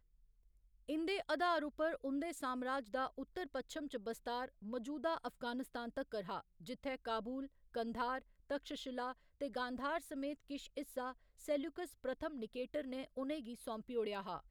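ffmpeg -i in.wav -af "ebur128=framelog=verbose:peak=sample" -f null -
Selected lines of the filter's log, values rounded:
Integrated loudness:
  I:         -42.7 LUFS
  Threshold: -52.7 LUFS
Loudness range:
  LRA:         3.7 LU
  Threshold: -63.0 LUFS
  LRA low:   -44.2 LUFS
  LRA high:  -40.5 LUFS
Sample peak:
  Peak:      -24.4 dBFS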